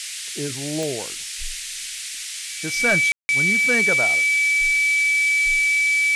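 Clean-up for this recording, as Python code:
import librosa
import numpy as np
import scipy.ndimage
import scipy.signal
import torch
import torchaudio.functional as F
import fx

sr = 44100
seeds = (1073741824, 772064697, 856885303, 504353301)

y = fx.fix_declick_ar(x, sr, threshold=10.0)
y = fx.notch(y, sr, hz=2300.0, q=30.0)
y = fx.fix_ambience(y, sr, seeds[0], print_start_s=1.9, print_end_s=2.4, start_s=3.12, end_s=3.29)
y = fx.noise_reduce(y, sr, print_start_s=1.9, print_end_s=2.4, reduce_db=30.0)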